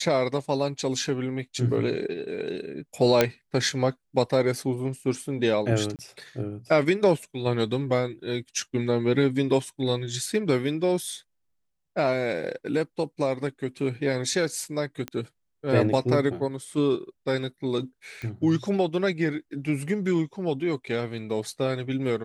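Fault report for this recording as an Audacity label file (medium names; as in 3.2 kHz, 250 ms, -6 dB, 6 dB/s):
3.210000	3.210000	pop -4 dBFS
5.960000	5.990000	dropout 28 ms
15.080000	15.080000	pop -17 dBFS
18.220000	18.220000	pop -24 dBFS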